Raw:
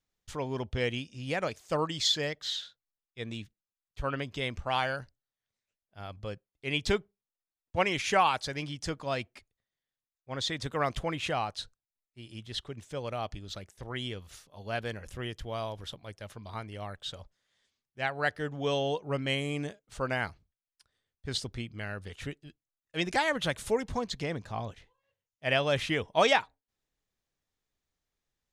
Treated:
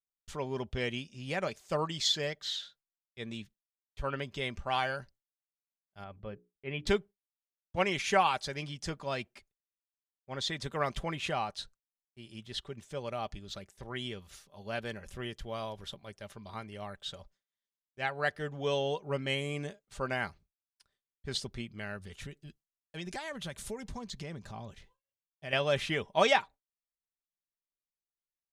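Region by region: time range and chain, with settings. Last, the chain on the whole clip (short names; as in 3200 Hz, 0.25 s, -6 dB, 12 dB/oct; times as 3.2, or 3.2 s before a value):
6.04–6.87 air absorption 480 m + notches 60/120/180/240/300/360/420/480 Hz
21.96–25.53 tone controls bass +5 dB, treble +4 dB + compressor 2.5:1, threshold -39 dBFS
whole clip: gate with hold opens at -55 dBFS; comb 5.1 ms, depth 36%; gain -2.5 dB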